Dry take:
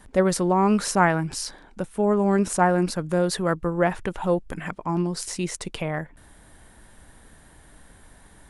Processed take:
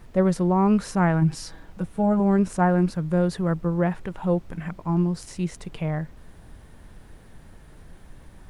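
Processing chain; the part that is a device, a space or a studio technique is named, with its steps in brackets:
0:01.21–0:02.20: comb filter 6.2 ms, depth 79%
harmonic and percussive parts rebalanced harmonic +5 dB
car interior (parametric band 160 Hz +7 dB 0.75 octaves; high-shelf EQ 4,800 Hz −7 dB; brown noise bed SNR 20 dB)
level −7 dB

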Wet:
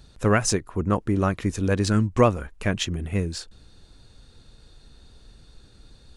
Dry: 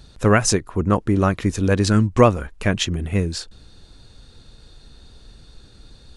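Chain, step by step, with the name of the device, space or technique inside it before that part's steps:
exciter from parts (in parallel at −13.5 dB: high-pass filter 3,000 Hz 6 dB per octave + soft clipping −28 dBFS, distortion −5 dB + high-pass filter 3,100 Hz 24 dB per octave)
on the sum: level −4.5 dB

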